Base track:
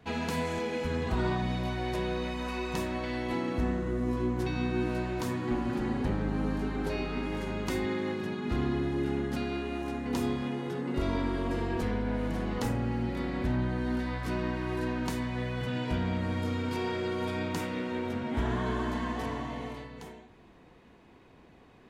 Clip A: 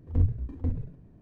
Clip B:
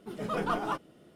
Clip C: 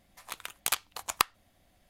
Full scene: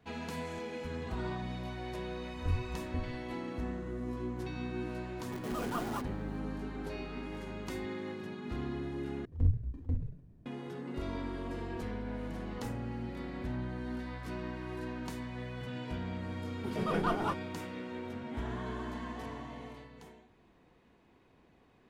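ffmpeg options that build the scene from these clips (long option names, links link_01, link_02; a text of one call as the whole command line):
ffmpeg -i bed.wav -i cue0.wav -i cue1.wav -filter_complex "[1:a]asplit=2[link_01][link_02];[2:a]asplit=2[link_03][link_04];[0:a]volume=-8dB[link_05];[link_03]acrusher=bits=7:dc=4:mix=0:aa=0.000001[link_06];[link_02]equalizer=frequency=740:width=0.32:gain=-5[link_07];[link_04]bass=frequency=250:gain=6,treble=frequency=4000:gain=-2[link_08];[link_05]asplit=2[link_09][link_10];[link_09]atrim=end=9.254[link_11];[link_07]atrim=end=1.21,asetpts=PTS-STARTPTS,volume=-3.5dB[link_12];[link_10]atrim=start=10.456[link_13];[link_01]atrim=end=1.21,asetpts=PTS-STARTPTS,volume=-9dB,afade=type=in:duration=0.004:curve=hsin,afade=type=out:start_time=1.206:duration=0.004:curve=hsin,adelay=2300[link_14];[link_06]atrim=end=1.15,asetpts=PTS-STARTPTS,volume=-7.5dB,afade=type=in:duration=0.004:curve=hsin,afade=type=out:start_time=1.146:duration=0.004:curve=hsin,adelay=231525S[link_15];[link_08]atrim=end=1.15,asetpts=PTS-STARTPTS,volume=-2dB,afade=type=in:duration=0.004:curve=hsin,afade=type=out:start_time=1.146:duration=0.004:curve=hsin,adelay=16570[link_16];[link_11][link_12]acrossfade=duration=0.004:curve1=hsin:curve2=hsin[link_17];[link_17][link_13]acrossfade=duration=0.004:curve1=hsin:curve2=hsin[link_18];[link_18][link_14][link_15][link_16]amix=inputs=4:normalize=0" out.wav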